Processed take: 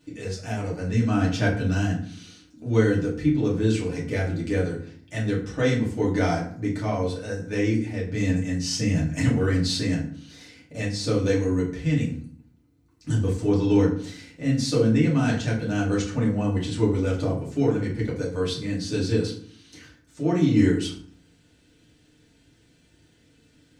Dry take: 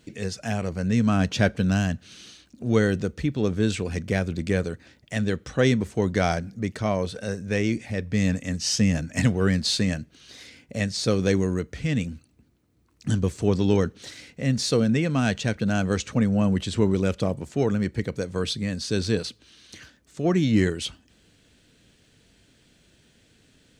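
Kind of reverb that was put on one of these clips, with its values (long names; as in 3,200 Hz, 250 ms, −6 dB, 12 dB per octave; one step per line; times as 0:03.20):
feedback delay network reverb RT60 0.53 s, low-frequency decay 1.45×, high-frequency decay 0.65×, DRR −6 dB
level −8.5 dB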